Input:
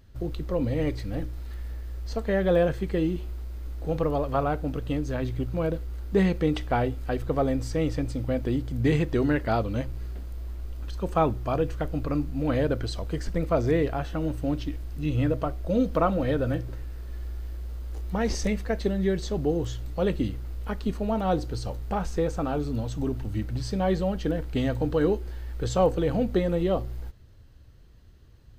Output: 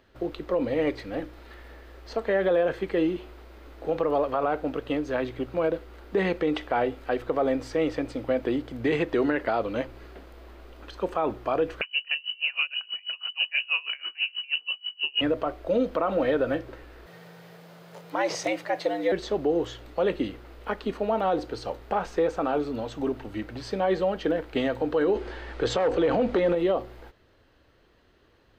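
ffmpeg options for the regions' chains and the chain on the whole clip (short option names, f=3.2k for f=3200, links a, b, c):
-filter_complex "[0:a]asettb=1/sr,asplit=3[a][b][c];[a]atrim=end=11.814[d];[b]atrim=start=11.81:end=15.21,asetpts=PTS-STARTPTS,afade=t=in:d=0.004:c=qsin,afade=t=out:st=3.396:d=0.004:c=qsin,lowpass=f=2.6k:t=q:w=0.5098,lowpass=f=2.6k:t=q:w=0.6013,lowpass=f=2.6k:t=q:w=0.9,lowpass=f=2.6k:t=q:w=2.563,afreqshift=-3000,aeval=exprs='val(0)*pow(10,-29*(0.5-0.5*cos(2*PI*6.2*n/s))/20)':c=same[e];[c]atrim=start=15.206[f];[d][e]acrossfade=d=0.004:c1=hsin:c2=qsin[g];[g][f]acrossfade=d=0.004:c1=qsin:c2=hsin,asettb=1/sr,asplit=3[h][i][j];[h]atrim=end=17.064[k];[i]atrim=start=17.06:end=19.12,asetpts=PTS-STARTPTS,afade=t=in:d=0.004:c=qsin,afade=t=out:st=2.056:d=0.004:c=qsin,bass=f=250:g=-10,treble=f=4k:g=5,afreqshift=110[l];[j]atrim=start=19.116[m];[k][l]acrossfade=d=0.004:c1=hsin:c2=qsin[n];[n][m]acrossfade=d=0.004:c1=qsin:c2=hsin,asettb=1/sr,asplit=3[o][p][q];[o]atrim=end=25.154[r];[p]atrim=start=25.15:end=26.55,asetpts=PTS-STARTPTS,afade=t=in:d=0.004:c=qsin,afade=t=out:st=1.396:d=0.004:c=qsin,lowpass=7.4k,acontrast=73,asoftclip=type=hard:threshold=-11dB[s];[q]atrim=start=26.546[t];[r][s]acrossfade=d=0.004:c1=hsin:c2=qsin[u];[u][t]acrossfade=d=0.004:c1=qsin:c2=hsin,acrossover=split=290 3800:gain=0.1 1 0.2[v][w][x];[v][w][x]amix=inputs=3:normalize=0,alimiter=limit=-21.5dB:level=0:latency=1:release=55,volume=6dB"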